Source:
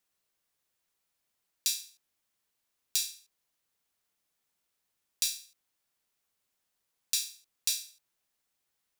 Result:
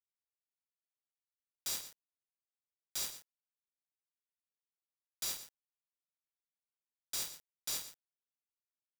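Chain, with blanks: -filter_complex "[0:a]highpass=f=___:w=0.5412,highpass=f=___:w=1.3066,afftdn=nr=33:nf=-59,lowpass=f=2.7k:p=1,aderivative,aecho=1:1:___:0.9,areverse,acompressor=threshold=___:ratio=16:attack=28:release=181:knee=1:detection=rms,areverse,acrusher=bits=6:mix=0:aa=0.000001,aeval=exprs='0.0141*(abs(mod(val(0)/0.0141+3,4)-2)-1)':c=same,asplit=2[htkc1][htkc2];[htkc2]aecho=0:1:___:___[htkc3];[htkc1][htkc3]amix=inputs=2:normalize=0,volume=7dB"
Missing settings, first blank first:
1.5k, 1.5k, 2.1, -41dB, 118, 0.237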